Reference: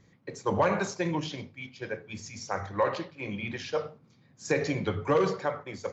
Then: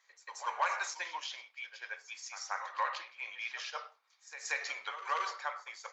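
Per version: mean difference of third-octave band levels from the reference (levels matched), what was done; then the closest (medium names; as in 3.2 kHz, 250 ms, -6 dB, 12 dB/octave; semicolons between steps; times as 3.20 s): 13.5 dB: high-pass 910 Hz 24 dB/octave; on a send: reverse echo 181 ms -12.5 dB; on the sum: trim -1.5 dB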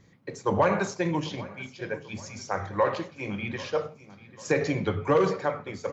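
2.0 dB: dynamic bell 4.9 kHz, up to -3 dB, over -49 dBFS, Q 0.79; on a send: feedback delay 792 ms, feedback 43%, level -19 dB; on the sum: trim +2.5 dB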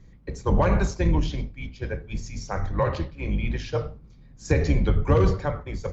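3.5 dB: octave divider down 2 oct, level +2 dB; bass shelf 210 Hz +10.5 dB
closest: second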